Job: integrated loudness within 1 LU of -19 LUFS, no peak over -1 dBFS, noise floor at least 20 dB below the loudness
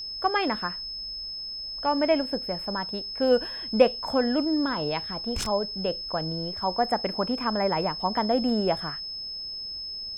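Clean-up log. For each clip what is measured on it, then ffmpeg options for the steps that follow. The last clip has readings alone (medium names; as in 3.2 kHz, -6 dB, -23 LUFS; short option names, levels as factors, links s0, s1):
steady tone 5.2 kHz; tone level -33 dBFS; loudness -27.0 LUFS; peak level -5.5 dBFS; loudness target -19.0 LUFS
-> -af "bandreject=f=5200:w=30"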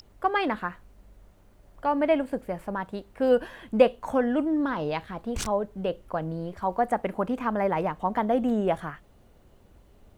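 steady tone not found; loudness -27.5 LUFS; peak level -6.0 dBFS; loudness target -19.0 LUFS
-> -af "volume=2.66,alimiter=limit=0.891:level=0:latency=1"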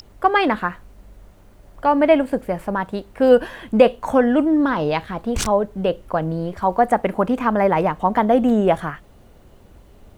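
loudness -19.0 LUFS; peak level -1.0 dBFS; noise floor -49 dBFS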